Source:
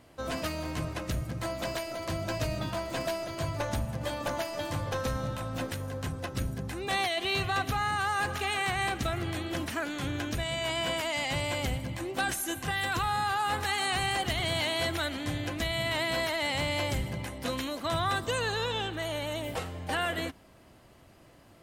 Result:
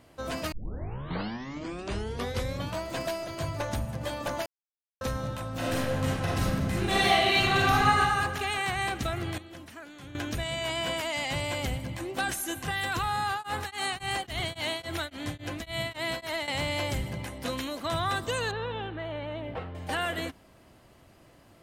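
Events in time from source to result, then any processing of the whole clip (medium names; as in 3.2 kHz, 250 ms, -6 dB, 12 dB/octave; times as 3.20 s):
0.52 s: tape start 2.32 s
4.46–5.01 s: mute
5.57–8.00 s: reverb throw, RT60 1.6 s, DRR -6.5 dB
9.38–10.15 s: gain -12 dB
13.30–16.48 s: tremolo of two beating tones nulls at 3.6 Hz
18.51–19.75 s: distance through air 420 m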